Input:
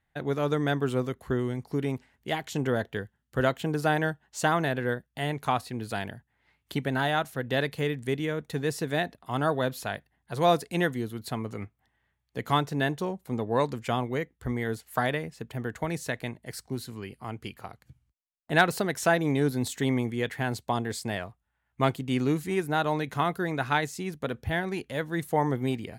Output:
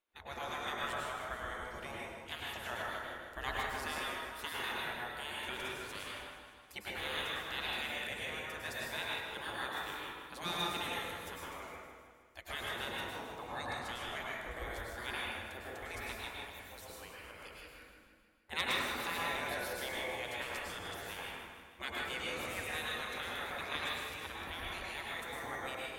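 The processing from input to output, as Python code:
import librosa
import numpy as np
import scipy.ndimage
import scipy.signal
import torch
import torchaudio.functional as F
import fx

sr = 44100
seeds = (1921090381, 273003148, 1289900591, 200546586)

y = fx.spec_gate(x, sr, threshold_db=-15, keep='weak')
y = fx.low_shelf(y, sr, hz=90.0, db=11.0)
y = fx.echo_feedback(y, sr, ms=156, feedback_pct=59, wet_db=-10)
y = fx.rev_plate(y, sr, seeds[0], rt60_s=1.4, hf_ratio=0.5, predelay_ms=90, drr_db=-4.5)
y = y * 10.0 ** (-5.5 / 20.0)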